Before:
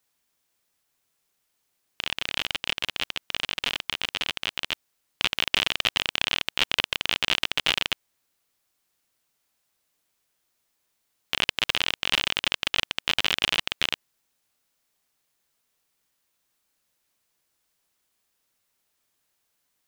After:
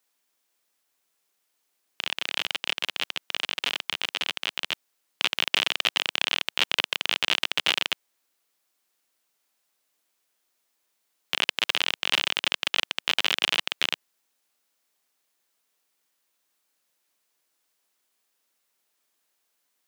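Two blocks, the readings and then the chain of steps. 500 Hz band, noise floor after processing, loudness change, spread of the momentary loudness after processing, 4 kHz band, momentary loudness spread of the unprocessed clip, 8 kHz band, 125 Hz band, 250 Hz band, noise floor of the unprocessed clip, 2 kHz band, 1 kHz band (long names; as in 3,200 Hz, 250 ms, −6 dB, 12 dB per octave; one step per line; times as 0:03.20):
−0.5 dB, −75 dBFS, 0.0 dB, 7 LU, 0.0 dB, 7 LU, 0.0 dB, below −10 dB, −3.0 dB, −75 dBFS, 0.0 dB, 0.0 dB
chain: high-pass filter 250 Hz 12 dB per octave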